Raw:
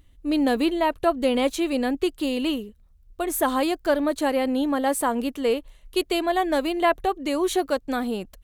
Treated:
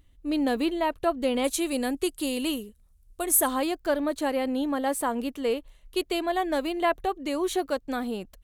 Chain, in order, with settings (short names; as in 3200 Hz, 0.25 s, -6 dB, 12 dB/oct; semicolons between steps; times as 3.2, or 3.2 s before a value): 1.44–3.48 bell 10000 Hz +13.5 dB 1.3 oct; gain -4 dB